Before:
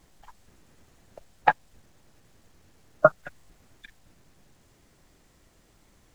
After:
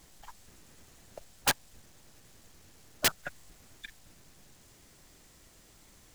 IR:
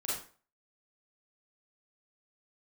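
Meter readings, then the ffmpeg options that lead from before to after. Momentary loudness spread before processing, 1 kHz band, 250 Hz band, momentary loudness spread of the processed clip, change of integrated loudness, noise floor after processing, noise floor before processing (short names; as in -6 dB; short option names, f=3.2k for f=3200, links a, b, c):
5 LU, -13.5 dB, -3.5 dB, 20 LU, -6.5 dB, -59 dBFS, -62 dBFS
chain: -af "highshelf=f=2.9k:g=8.5,aeval=exprs='(mod(7.08*val(0)+1,2)-1)/7.08':c=same"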